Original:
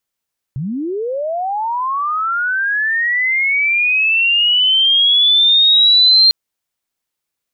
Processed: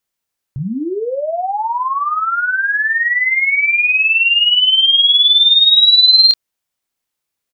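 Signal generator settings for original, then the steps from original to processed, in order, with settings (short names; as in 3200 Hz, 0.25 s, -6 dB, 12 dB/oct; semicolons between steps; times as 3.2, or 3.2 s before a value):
chirp linear 120 Hz -> 4200 Hz -19 dBFS -> -6 dBFS 5.75 s
doubler 27 ms -7 dB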